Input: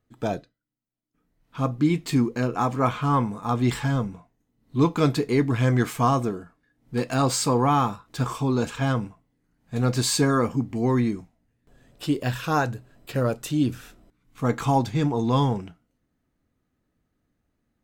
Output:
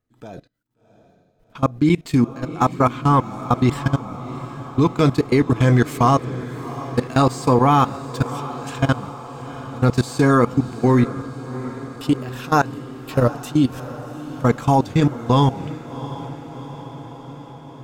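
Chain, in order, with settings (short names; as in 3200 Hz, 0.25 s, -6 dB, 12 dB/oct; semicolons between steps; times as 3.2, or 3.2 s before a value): 8.23–8.78 Chebyshev high-pass 330 Hz; level quantiser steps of 22 dB; on a send: diffused feedback echo 0.721 s, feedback 67%, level -14.5 dB; on the sum: gain +8.5 dB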